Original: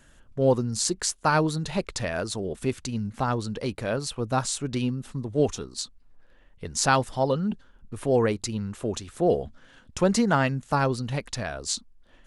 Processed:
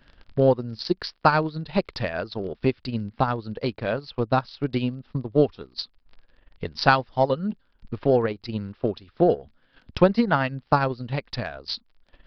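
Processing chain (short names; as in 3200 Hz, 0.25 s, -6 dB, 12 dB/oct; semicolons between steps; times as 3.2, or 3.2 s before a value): crackle 35/s -36 dBFS; downsampling 11025 Hz; transient shaper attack +8 dB, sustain -10 dB; gain -1 dB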